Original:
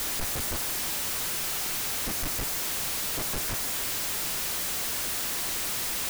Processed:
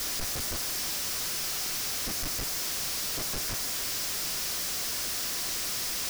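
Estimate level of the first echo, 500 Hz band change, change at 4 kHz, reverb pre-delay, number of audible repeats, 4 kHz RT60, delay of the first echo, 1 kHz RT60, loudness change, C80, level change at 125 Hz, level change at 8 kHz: no echo audible, −3.0 dB, +1.0 dB, no reverb audible, no echo audible, no reverb audible, no echo audible, no reverb audible, −1.5 dB, no reverb audible, −3.0 dB, −0.5 dB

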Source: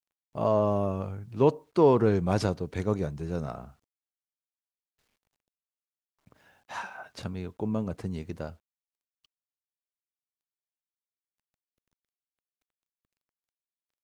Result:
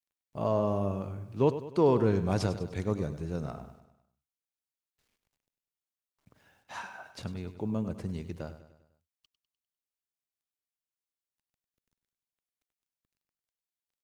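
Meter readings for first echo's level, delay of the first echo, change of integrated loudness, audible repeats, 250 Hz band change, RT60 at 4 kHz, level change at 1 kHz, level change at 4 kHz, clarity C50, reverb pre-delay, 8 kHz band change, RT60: −12.5 dB, 100 ms, −3.0 dB, 4, −2.5 dB, no reverb audible, −4.0 dB, −2.0 dB, no reverb audible, no reverb audible, −1.5 dB, no reverb audible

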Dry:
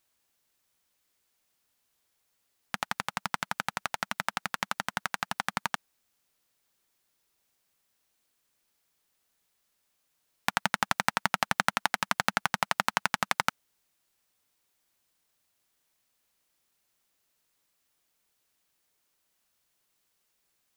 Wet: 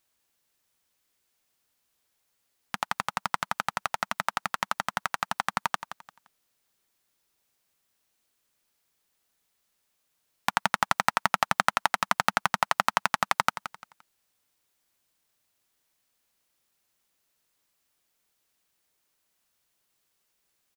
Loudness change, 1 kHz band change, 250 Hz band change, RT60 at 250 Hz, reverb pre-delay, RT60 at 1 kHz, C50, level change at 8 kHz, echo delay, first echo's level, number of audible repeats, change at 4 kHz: +2.5 dB, +4.5 dB, −0.5 dB, no reverb audible, no reverb audible, no reverb audible, no reverb audible, +0.5 dB, 173 ms, −12.0 dB, 3, +0.5 dB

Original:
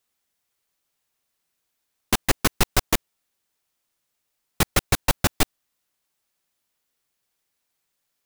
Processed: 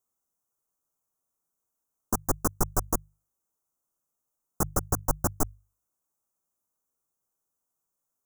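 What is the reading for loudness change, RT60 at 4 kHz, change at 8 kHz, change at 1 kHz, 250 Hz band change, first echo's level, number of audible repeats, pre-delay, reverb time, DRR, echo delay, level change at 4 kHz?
−6.5 dB, no reverb audible, −5.5 dB, −5.5 dB, −5.0 dB, no echo audible, no echo audible, no reverb audible, no reverb audible, no reverb audible, no echo audible, −22.0 dB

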